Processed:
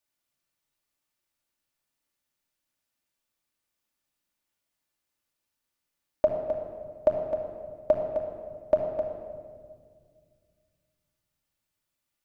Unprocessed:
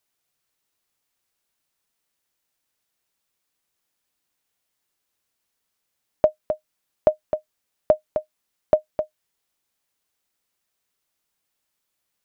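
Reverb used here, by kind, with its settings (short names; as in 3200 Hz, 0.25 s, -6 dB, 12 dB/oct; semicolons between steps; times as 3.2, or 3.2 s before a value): shoebox room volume 3200 m³, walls mixed, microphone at 2.5 m; gain -8 dB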